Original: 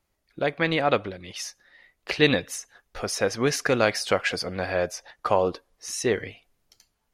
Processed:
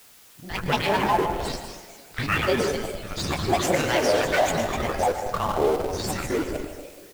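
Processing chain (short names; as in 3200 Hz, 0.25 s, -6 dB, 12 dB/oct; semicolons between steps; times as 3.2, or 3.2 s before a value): regenerating reverse delay 0.117 s, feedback 68%, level -8.5 dB; chorus voices 2, 0.77 Hz, delay 24 ms, depth 2.6 ms; three bands offset in time lows, highs, mids 80/260 ms, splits 240/840 Hz; grains 0.1 s, grains 20/s, spray 11 ms, pitch spread up and down by 7 st; in parallel at -3 dB: Schmitt trigger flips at -30 dBFS; on the sum: dynamic EQ 860 Hz, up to +5 dB, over -38 dBFS, Q 1.6; on a send at -8 dB: reverb RT60 0.80 s, pre-delay 0.107 s; on the sum: added noise white -53 dBFS; gain +1.5 dB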